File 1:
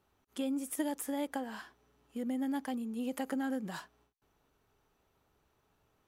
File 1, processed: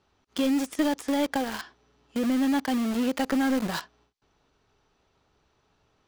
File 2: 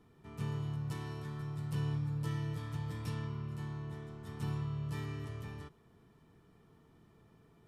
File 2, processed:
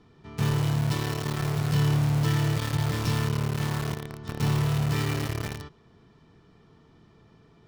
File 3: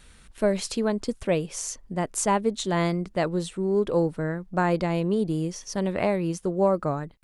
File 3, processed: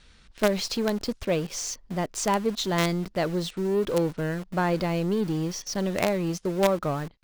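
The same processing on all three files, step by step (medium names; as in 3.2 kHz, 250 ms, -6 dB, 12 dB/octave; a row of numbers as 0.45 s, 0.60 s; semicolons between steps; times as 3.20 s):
resonant low-pass 5.1 kHz, resonance Q 1.6; in parallel at -9 dB: companded quantiser 2-bit; on the sum: normalise loudness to -27 LUFS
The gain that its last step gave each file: +5.0 dB, +7.0 dB, -3.5 dB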